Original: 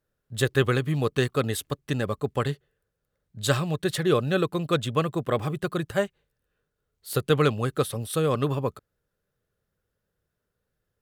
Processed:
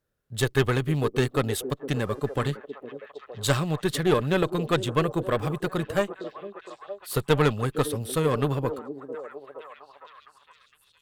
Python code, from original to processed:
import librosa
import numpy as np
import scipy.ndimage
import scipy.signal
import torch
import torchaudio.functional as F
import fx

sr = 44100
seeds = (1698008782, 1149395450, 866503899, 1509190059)

y = fx.cheby_harmonics(x, sr, harmonics=(4,), levels_db=(-16,), full_scale_db=-7.5)
y = fx.dmg_buzz(y, sr, base_hz=400.0, harmonics=32, level_db=-59.0, tilt_db=-5, odd_only=False, at=(1.94, 2.48), fade=0.02)
y = fx.echo_stepped(y, sr, ms=461, hz=330.0, octaves=0.7, feedback_pct=70, wet_db=-8)